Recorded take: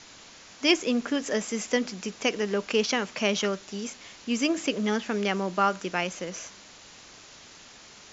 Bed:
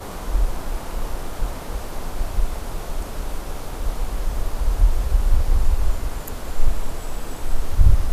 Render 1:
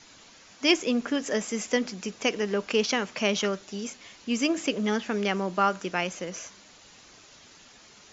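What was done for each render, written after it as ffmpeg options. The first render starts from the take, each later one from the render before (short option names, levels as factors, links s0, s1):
-af "afftdn=nr=6:nf=-50"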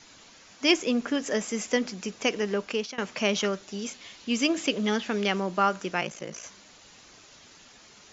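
-filter_complex "[0:a]asettb=1/sr,asplit=3[s0][s1][s2];[s0]atrim=end=3.814[s3];[s1]atrim=start=3.81:end=5.4,asetpts=PTS-STARTPTS,afade=t=in:d=0.004:c=qsin,afade=t=out:st=1.586:d=0.004:c=qsin,equalizer=f=3600:w=1.5:g=4.5[s4];[s2]atrim=start=5.396[s5];[s3][s4]acrossfade=d=0.004:c1=hsin:c2=qsin[s6];[s6][s5]acrossfade=d=0.004:c1=qsin:c2=hsin,asplit=3[s7][s8][s9];[s7]afade=t=out:st=6:d=0.02[s10];[s8]aeval=exprs='val(0)*sin(2*PI*28*n/s)':c=same,afade=t=in:st=6:d=0.02,afade=t=out:st=6.42:d=0.02[s11];[s9]afade=t=in:st=6.42:d=0.02[s12];[s10][s11][s12]amix=inputs=3:normalize=0,asplit=2[s13][s14];[s13]atrim=end=2.98,asetpts=PTS-STARTPTS,afade=t=out:st=2.41:d=0.57:c=qsin:silence=0.0794328[s15];[s14]atrim=start=2.98,asetpts=PTS-STARTPTS,afade=t=in:d=0.004:c=hsin:silence=0.0794328[s16];[s15][s16]concat=n=2:v=0:a=1"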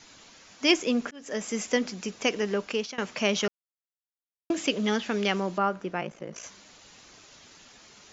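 -filter_complex "[0:a]asettb=1/sr,asplit=3[s0][s1][s2];[s0]atrim=end=5.584[s3];[s1]atrim=start=5.58:end=6.36,asetpts=PTS-STARTPTS,afade=t=in:d=0.004:c=qsin,afade=t=out:st=0.776:d=0.004:c=qsin,lowpass=f=1100:p=1[s4];[s2]atrim=start=6.356[s5];[s3][s4]acrossfade=d=0.004:c1=hsin:c2=qsin[s6];[s6][s5]acrossfade=d=0.004:c1=qsin:c2=hsin,asplit=4[s7][s8][s9][s10];[s7]atrim=end=1.11,asetpts=PTS-STARTPTS,afade=t=out:st=1.106:d=0.004:c=hsin[s11];[s8]atrim=start=1.11:end=3.48,asetpts=PTS-STARTPTS,afade=t=in:d=0.41,afade=t=out:st=2.366:d=0.004:c=hsin[s12];[s9]atrim=start=3.48:end=4.5,asetpts=PTS-STARTPTS,volume=0[s13];[s10]atrim=start=4.5,asetpts=PTS-STARTPTS,afade=t=in:d=0.004:c=hsin[s14];[s11][s12][s13][s14]concat=n=4:v=0:a=1"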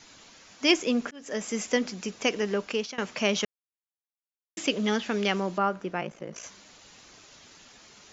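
-filter_complex "[0:a]asplit=3[s0][s1][s2];[s0]atrim=end=3.45,asetpts=PTS-STARTPTS,afade=t=out:st=3.446:d=0.004:c=hsin[s3];[s1]atrim=start=3.45:end=4.57,asetpts=PTS-STARTPTS,volume=0[s4];[s2]atrim=start=4.57,asetpts=PTS-STARTPTS,afade=t=in:d=0.004:c=hsin[s5];[s3][s4][s5]concat=n=3:v=0:a=1"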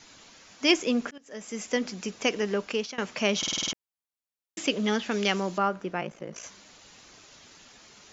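-filter_complex "[0:a]asettb=1/sr,asplit=3[s0][s1][s2];[s0]atrim=end=5.114[s3];[s1]atrim=start=5.11:end=5.68,asetpts=PTS-STARTPTS,afade=t=in:d=0.004:c=qsin,afade=t=out:st=0.566:d=0.004:c=qsin,aemphasis=mode=production:type=cd[s4];[s2]atrim=start=5.676[s5];[s3][s4]acrossfade=d=0.004:c1=hsin:c2=qsin[s6];[s6][s5]acrossfade=d=0.004:c1=qsin:c2=hsin,asplit=9[s7][s8][s9][s10][s11][s12][s13][s14][s15];[s7]atrim=end=1.18,asetpts=PTS-STARTPTS,afade=t=out:st=1.176:d=0.004:c=hsin:silence=0.188365[s16];[s8]atrim=start=1.18:end=3.432,asetpts=PTS-STARTPTS,afade=t=in:d=0.77:silence=0.188365[s17];[s9]atrim=start=3.378:end=3.432[s18];[s10]atrim=start=3.378:end=3.432[s19];[s11]atrim=start=3.378:end=3.432[s20];[s12]atrim=start=3.378:end=3.432[s21];[s13]atrim=start=3.378:end=3.432[s22];[s14]atrim=start=3.378:end=3.432[s23];[s15]atrim=start=3.728[s24];[s16][s17]concat=n=2:v=0:a=1[s25];[s25][s18]acrossfade=d=0.004:c1=hsin:c2=hsin[s26];[s26][s19]acrossfade=d=0.004:c1=hsin:c2=hsin[s27];[s27][s20]acrossfade=d=0.004:c1=hsin:c2=hsin[s28];[s28][s21]acrossfade=d=0.004:c1=hsin:c2=hsin[s29];[s29][s22]acrossfade=d=0.004:c1=hsin:c2=hsin[s30];[s30][s23]acrossfade=d=0.004:c1=hsin:c2=hsin[s31];[s31][s24]acrossfade=d=0.004:c1=hsin:c2=hsin"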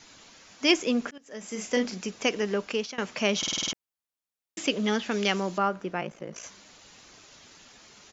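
-filter_complex "[0:a]asplit=3[s0][s1][s2];[s0]afade=t=out:st=1.42:d=0.02[s3];[s1]asplit=2[s4][s5];[s5]adelay=37,volume=0.531[s6];[s4][s6]amix=inputs=2:normalize=0,afade=t=in:st=1.42:d=0.02,afade=t=out:st=1.97:d=0.02[s7];[s2]afade=t=in:st=1.97:d=0.02[s8];[s3][s7][s8]amix=inputs=3:normalize=0"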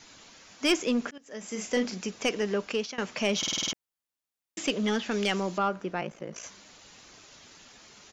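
-af "asoftclip=type=tanh:threshold=0.158"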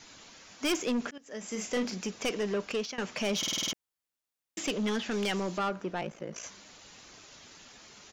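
-af "asoftclip=type=tanh:threshold=0.0596"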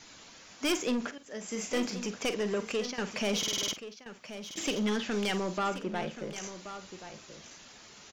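-filter_complex "[0:a]asplit=2[s0][s1];[s1]adelay=48,volume=0.224[s2];[s0][s2]amix=inputs=2:normalize=0,aecho=1:1:1079:0.251"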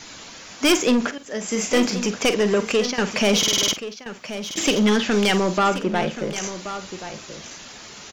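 -af "volume=3.98"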